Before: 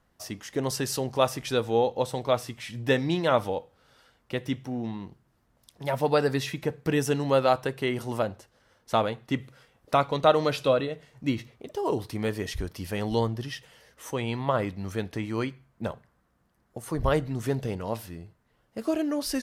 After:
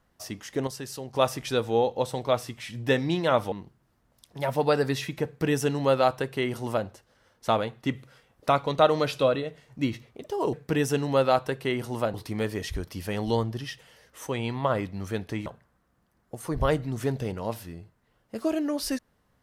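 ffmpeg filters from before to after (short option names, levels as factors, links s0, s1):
-filter_complex "[0:a]asplit=7[s0][s1][s2][s3][s4][s5][s6];[s0]atrim=end=0.672[s7];[s1]atrim=start=0.668:end=1.142,asetpts=PTS-STARTPTS,volume=0.398[s8];[s2]atrim=start=1.138:end=3.522[s9];[s3]atrim=start=4.968:end=11.982[s10];[s4]atrim=start=6.698:end=8.312[s11];[s5]atrim=start=11.978:end=15.302[s12];[s6]atrim=start=15.888[s13];[s7][s8]acrossfade=d=0.004:c1=hsin:c2=hsin[s14];[s14][s9]acrossfade=d=0.004:c1=hsin:c2=hsin[s15];[s15][s10]acrossfade=d=0.004:c1=hsin:c2=hsin[s16];[s16][s11]acrossfade=d=0.004:c1=hsin:c2=hsin[s17];[s17][s12]acrossfade=d=0.004:c1=hsin:c2=hsin[s18];[s18][s13]acrossfade=d=0.004:c1=hsin:c2=hsin"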